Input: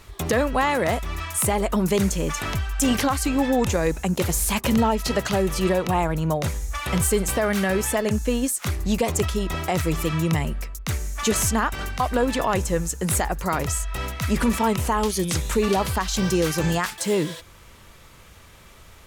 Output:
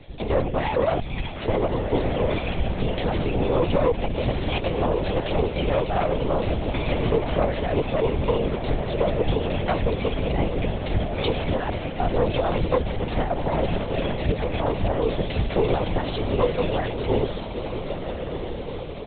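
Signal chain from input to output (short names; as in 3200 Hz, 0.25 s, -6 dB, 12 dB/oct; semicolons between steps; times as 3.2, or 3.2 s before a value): tilt shelf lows +3.5 dB; notches 50/100/150/200 Hz; comb 4.3 ms, depth 63%; limiter -12.5 dBFS, peak gain reduction 8 dB; fixed phaser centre 520 Hz, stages 4; tube stage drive 18 dB, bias 0.75; diffused feedback echo 1.379 s, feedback 52%, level -6.5 dB; LPC vocoder at 8 kHz whisper; gain +6 dB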